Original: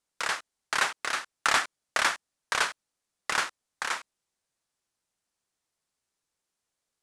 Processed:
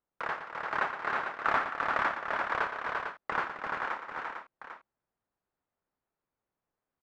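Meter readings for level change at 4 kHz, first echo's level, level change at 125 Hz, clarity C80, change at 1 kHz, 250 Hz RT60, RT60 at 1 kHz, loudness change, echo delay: -15.0 dB, -9.5 dB, +3.0 dB, no reverb, +1.0 dB, no reverb, no reverb, -3.5 dB, 117 ms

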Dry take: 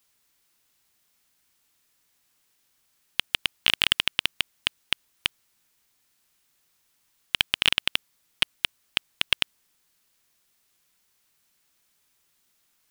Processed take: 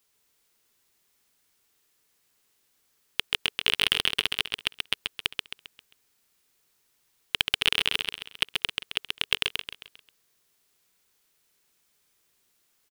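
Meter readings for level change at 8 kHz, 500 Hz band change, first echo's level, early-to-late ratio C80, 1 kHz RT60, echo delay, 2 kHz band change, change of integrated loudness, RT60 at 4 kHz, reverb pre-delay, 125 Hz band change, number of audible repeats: -1.0 dB, +3.0 dB, -4.0 dB, no reverb, no reverb, 133 ms, -1.0 dB, -1.0 dB, no reverb, no reverb, -1.0 dB, 5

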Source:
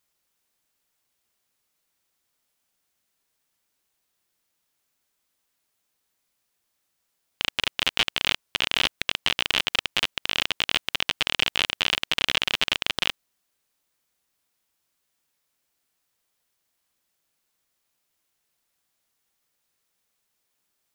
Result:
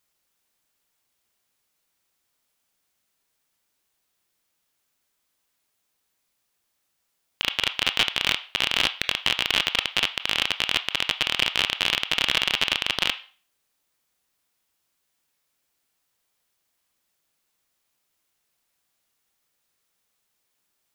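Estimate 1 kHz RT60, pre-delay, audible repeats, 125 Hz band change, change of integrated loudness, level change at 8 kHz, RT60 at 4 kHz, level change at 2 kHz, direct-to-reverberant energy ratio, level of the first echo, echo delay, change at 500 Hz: 0.40 s, 20 ms, no echo, +1.0 dB, +1.5 dB, +1.0 dB, 0.40 s, +1.5 dB, 10.0 dB, no echo, no echo, +1.0 dB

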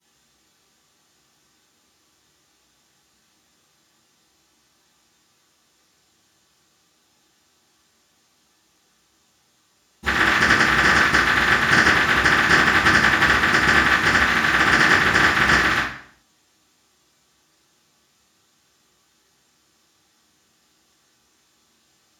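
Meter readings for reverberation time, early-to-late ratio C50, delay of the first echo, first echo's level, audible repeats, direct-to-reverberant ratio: 0.60 s, 2.5 dB, no echo, no echo, no echo, -21.5 dB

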